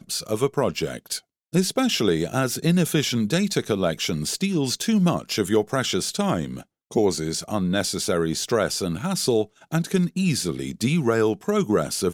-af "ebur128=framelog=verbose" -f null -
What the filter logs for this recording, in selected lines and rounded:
Integrated loudness:
  I:         -23.4 LUFS
  Threshold: -33.5 LUFS
Loudness range:
  LRA:         1.5 LU
  Threshold: -43.4 LUFS
  LRA low:   -24.2 LUFS
  LRA high:  -22.6 LUFS